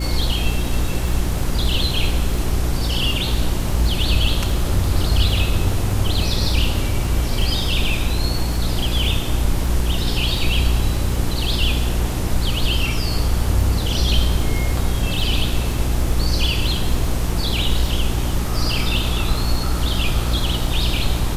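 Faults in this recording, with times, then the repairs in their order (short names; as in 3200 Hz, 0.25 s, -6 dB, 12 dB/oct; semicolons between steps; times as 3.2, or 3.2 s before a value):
crackle 24/s -26 dBFS
hum 60 Hz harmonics 6 -23 dBFS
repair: de-click; de-hum 60 Hz, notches 6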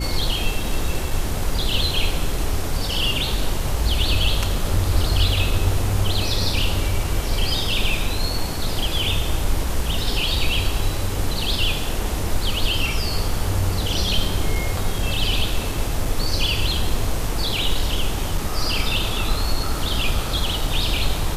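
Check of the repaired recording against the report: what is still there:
none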